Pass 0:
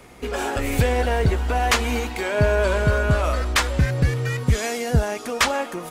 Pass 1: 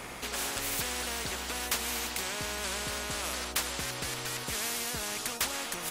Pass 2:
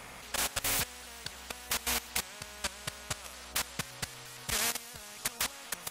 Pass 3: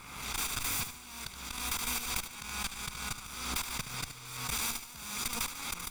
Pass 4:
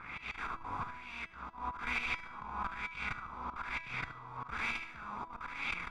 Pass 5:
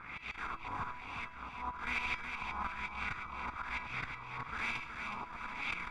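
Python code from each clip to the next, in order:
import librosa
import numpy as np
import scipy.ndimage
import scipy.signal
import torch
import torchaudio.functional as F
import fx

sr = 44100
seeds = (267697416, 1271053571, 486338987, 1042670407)

y1 = fx.spectral_comp(x, sr, ratio=4.0)
y1 = y1 * 10.0 ** (-8.5 / 20.0)
y2 = fx.level_steps(y1, sr, step_db=17)
y2 = fx.peak_eq(y2, sr, hz=340.0, db=-9.0, octaves=0.54)
y2 = y2 * 10.0 ** (4.0 / 20.0)
y3 = fx.lower_of_two(y2, sr, delay_ms=0.85)
y3 = fx.echo_feedback(y3, sr, ms=73, feedback_pct=34, wet_db=-9.5)
y3 = fx.pre_swell(y3, sr, db_per_s=48.0)
y3 = y3 * 10.0 ** (-1.5 / 20.0)
y4 = fx.filter_lfo_lowpass(y3, sr, shape='sine', hz=1.1, low_hz=950.0, high_hz=2500.0, q=3.5)
y4 = fx.auto_swell(y4, sr, attack_ms=157.0)
y4 = fx.comb_fb(y4, sr, f0_hz=330.0, decay_s=0.9, harmonics='all', damping=0.0, mix_pct=70)
y4 = y4 * 10.0 ** (7.5 / 20.0)
y5 = fx.echo_feedback(y4, sr, ms=369, feedback_pct=45, wet_db=-6.5)
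y5 = y5 * 10.0 ** (-1.0 / 20.0)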